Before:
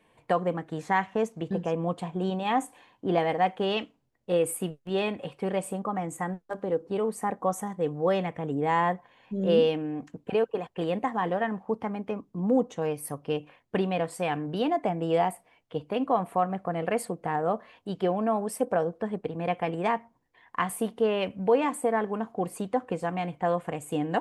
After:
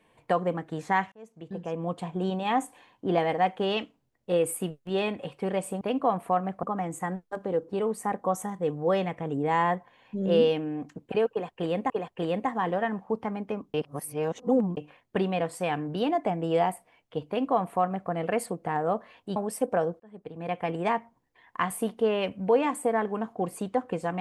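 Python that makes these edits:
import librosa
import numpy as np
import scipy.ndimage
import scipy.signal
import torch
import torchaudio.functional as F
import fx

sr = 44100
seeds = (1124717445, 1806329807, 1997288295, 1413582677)

y = fx.edit(x, sr, fx.fade_in_span(start_s=1.12, length_s=0.98),
    fx.repeat(start_s=10.49, length_s=0.59, count=2),
    fx.reverse_span(start_s=12.33, length_s=1.03),
    fx.duplicate(start_s=15.87, length_s=0.82, to_s=5.81),
    fx.cut(start_s=17.95, length_s=0.4),
    fx.fade_in_span(start_s=18.99, length_s=0.72), tone=tone)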